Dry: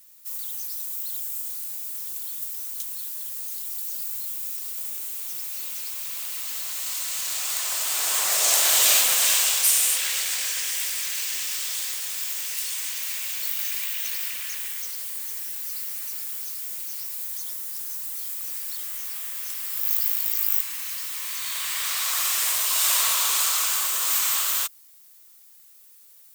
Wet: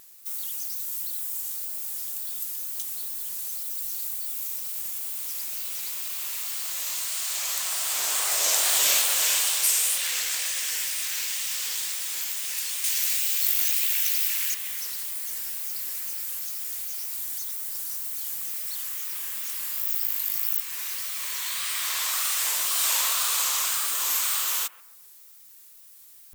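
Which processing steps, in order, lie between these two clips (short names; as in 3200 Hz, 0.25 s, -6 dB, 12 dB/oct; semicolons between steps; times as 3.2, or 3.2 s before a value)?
12.84–14.54 high shelf 2400 Hz +8.5 dB; in parallel at +2 dB: compressor, threshold -31 dBFS, peak gain reduction 15 dB; on the sum: wow and flutter 120 cents; analogue delay 0.135 s, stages 2048, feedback 36%, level -17.5 dB; gain -5 dB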